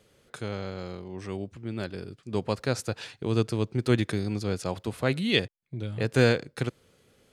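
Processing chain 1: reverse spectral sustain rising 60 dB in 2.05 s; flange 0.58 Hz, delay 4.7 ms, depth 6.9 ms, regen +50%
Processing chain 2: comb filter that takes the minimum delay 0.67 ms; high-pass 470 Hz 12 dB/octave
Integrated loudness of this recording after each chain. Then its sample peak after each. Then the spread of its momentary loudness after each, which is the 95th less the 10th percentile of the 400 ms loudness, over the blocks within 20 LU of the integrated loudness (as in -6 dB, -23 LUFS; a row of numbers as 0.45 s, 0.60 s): -29.0 LUFS, -35.0 LUFS; -7.5 dBFS, -11.0 dBFS; 14 LU, 17 LU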